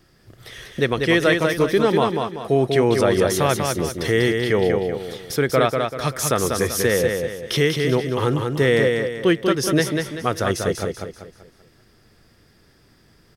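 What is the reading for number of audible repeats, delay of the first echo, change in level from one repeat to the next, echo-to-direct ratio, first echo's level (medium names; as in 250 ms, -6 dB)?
4, 193 ms, -8.0 dB, -4.0 dB, -4.5 dB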